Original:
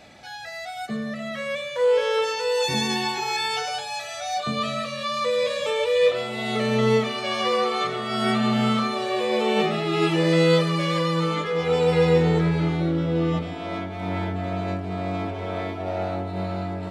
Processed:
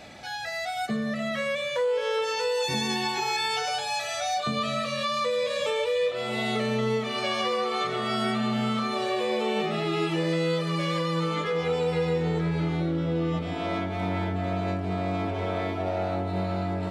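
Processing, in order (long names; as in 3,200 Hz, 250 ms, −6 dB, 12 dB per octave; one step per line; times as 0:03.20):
downward compressor 4 to 1, threshold −28 dBFS, peak gain reduction 12 dB
level +3 dB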